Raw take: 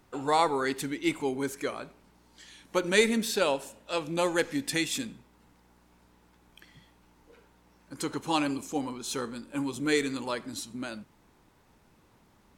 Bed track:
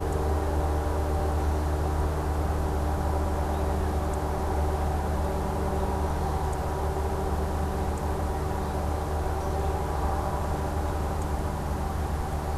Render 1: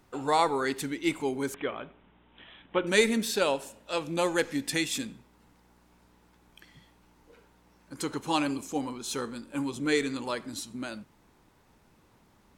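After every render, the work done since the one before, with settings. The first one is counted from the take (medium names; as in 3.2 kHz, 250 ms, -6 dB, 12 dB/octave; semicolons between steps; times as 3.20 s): 1.54–2.87 s: careless resampling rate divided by 6×, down none, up filtered; 9.70–10.24 s: treble shelf 12 kHz -10 dB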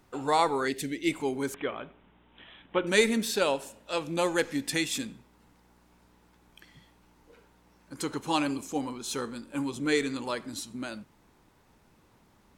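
0.68–1.13 s: high-order bell 1.1 kHz -15 dB 1 oct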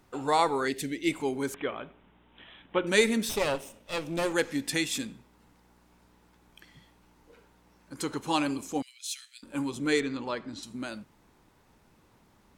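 3.29–4.33 s: comb filter that takes the minimum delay 0.35 ms; 8.82–9.43 s: steep high-pass 2.2 kHz; 10.00–10.63 s: distance through air 130 m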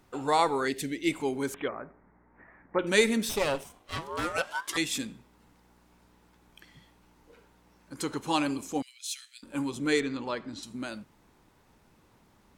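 1.68–2.79 s: elliptic low-pass 2 kHz; 3.63–4.76 s: ring modulator 430 Hz -> 1.5 kHz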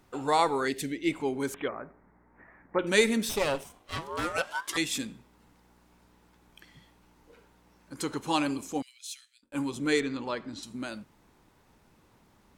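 0.92–1.40 s: treble shelf 5.1 kHz -9.5 dB; 8.45–9.52 s: fade out equal-power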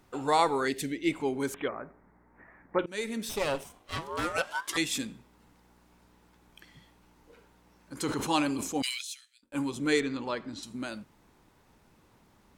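2.86–3.62 s: fade in, from -22 dB; 7.94–9.10 s: decay stretcher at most 47 dB/s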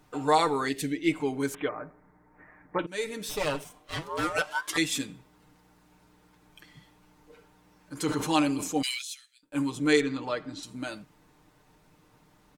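comb 6.6 ms, depth 63%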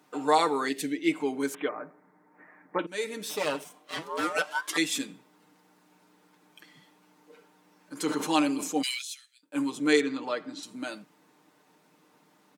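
high-pass 190 Hz 24 dB/octave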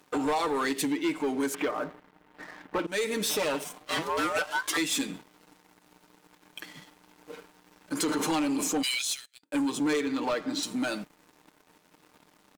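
compression 3:1, threshold -36 dBFS, peak gain reduction 14 dB; waveshaping leveller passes 3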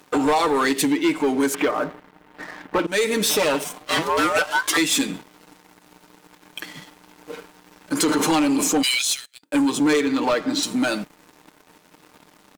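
trim +8.5 dB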